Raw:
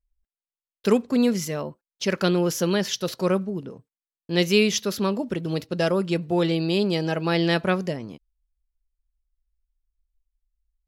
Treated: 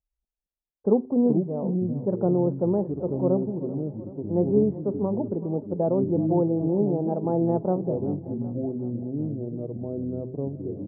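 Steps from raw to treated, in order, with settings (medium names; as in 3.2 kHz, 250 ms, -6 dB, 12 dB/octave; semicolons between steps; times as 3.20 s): elliptic low-pass 850 Hz, stop band 70 dB; ever faster or slower copies 133 ms, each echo -5 st, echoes 2, each echo -6 dB; high-pass 97 Hz 6 dB/octave; de-hum 128.2 Hz, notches 3; on a send: feedback delay 382 ms, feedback 60%, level -16 dB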